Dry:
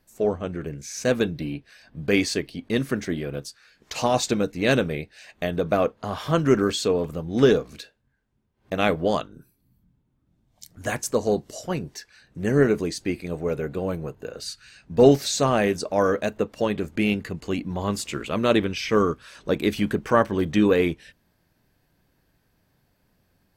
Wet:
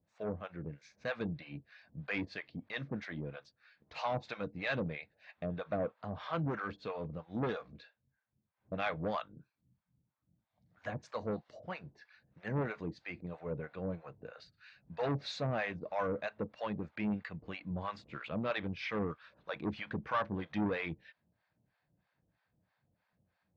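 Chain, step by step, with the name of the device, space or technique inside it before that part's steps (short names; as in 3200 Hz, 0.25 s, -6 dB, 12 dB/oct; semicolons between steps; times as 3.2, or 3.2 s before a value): guitar amplifier with harmonic tremolo (harmonic tremolo 3.1 Hz, depth 100%, crossover 630 Hz; soft clip -20.5 dBFS, distortion -10 dB; speaker cabinet 87–3700 Hz, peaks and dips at 260 Hz -6 dB, 390 Hz -10 dB, 3000 Hz -6 dB); gain -4.5 dB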